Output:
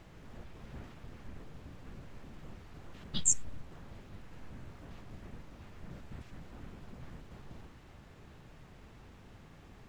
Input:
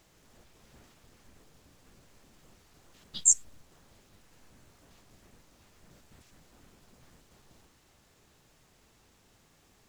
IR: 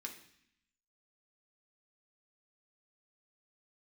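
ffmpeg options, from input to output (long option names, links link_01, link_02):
-af "bass=frequency=250:gain=6,treble=frequency=4000:gain=-15,volume=7.5dB"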